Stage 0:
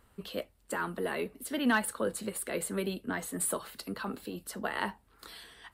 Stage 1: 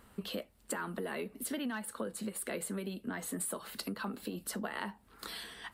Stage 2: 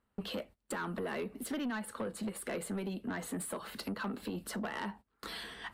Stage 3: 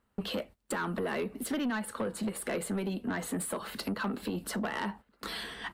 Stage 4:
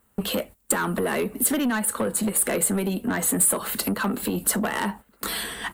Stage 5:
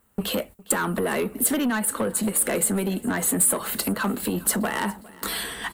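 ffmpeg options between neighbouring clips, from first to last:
-af "equalizer=f=210:t=o:w=0.53:g=6.5,acompressor=threshold=-39dB:ratio=12,lowshelf=f=160:g=-4.5,volume=5dB"
-af "aemphasis=mode=reproduction:type=cd,agate=range=-23dB:threshold=-52dB:ratio=16:detection=peak,asoftclip=type=tanh:threshold=-34.5dB,volume=3.5dB"
-filter_complex "[0:a]asplit=2[a][b];[b]adelay=1341,volume=-25dB,highshelf=f=4k:g=-30.2[c];[a][c]amix=inputs=2:normalize=0,volume=4.5dB"
-af "aexciter=amount=2:drive=9.5:freq=7k,volume=8dB"
-af "aecho=1:1:408|816|1224|1632:0.0841|0.0421|0.021|0.0105"

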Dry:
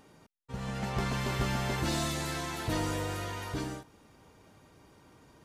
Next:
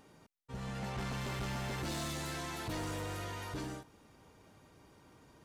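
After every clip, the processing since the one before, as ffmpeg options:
-af "asoftclip=type=tanh:threshold=-32dB,volume=-2.5dB"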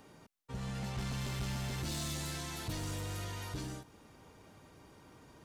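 -filter_complex "[0:a]acrossover=split=210|3000[a][b][c];[b]acompressor=threshold=-51dB:ratio=2.5[d];[a][d][c]amix=inputs=3:normalize=0,volume=3dB"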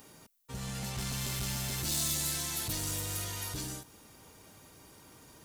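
-af "aemphasis=mode=production:type=75kf"

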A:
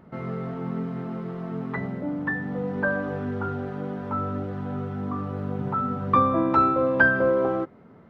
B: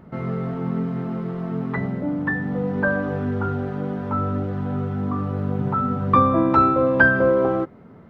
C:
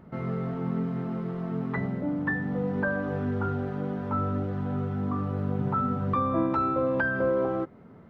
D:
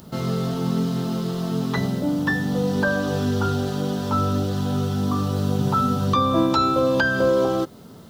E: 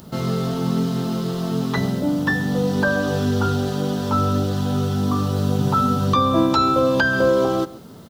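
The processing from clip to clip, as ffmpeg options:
-af "lowshelf=f=190:g=5,volume=3dB"
-af "alimiter=limit=-12dB:level=0:latency=1:release=327,volume=-4.5dB"
-af "aexciter=amount=9.8:drive=8.4:freq=3.3k,volume=6.5dB"
-af "aecho=1:1:135:0.112,volume=2dB"

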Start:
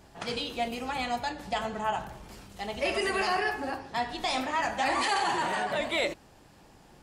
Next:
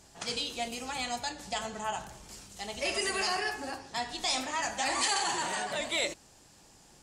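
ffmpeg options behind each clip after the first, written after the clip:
-af "equalizer=f=7.2k:t=o:w=1.6:g=15,volume=-5.5dB"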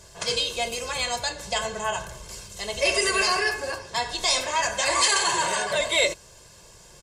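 -af "aecho=1:1:1.9:0.78,volume=6.5dB"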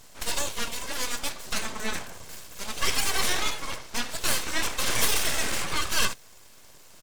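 -af "aeval=exprs='abs(val(0))':c=same"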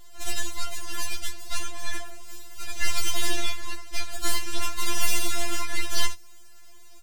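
-af "afftfilt=real='re*4*eq(mod(b,16),0)':imag='im*4*eq(mod(b,16),0)':win_size=2048:overlap=0.75"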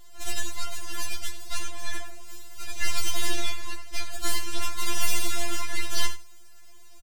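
-af "aecho=1:1:93:0.178,volume=-1.5dB"

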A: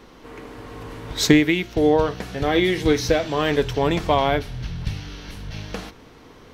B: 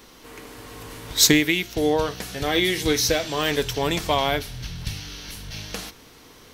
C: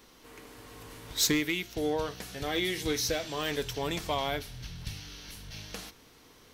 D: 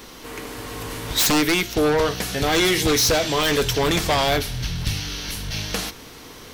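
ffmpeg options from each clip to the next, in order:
-af "crystalizer=i=4.5:c=0,volume=-4.5dB"
-af "asoftclip=type=tanh:threshold=-9dB,volume=-8.5dB"
-af "aeval=exprs='0.133*sin(PI/2*2.82*val(0)/0.133)':c=same,volume=3dB"

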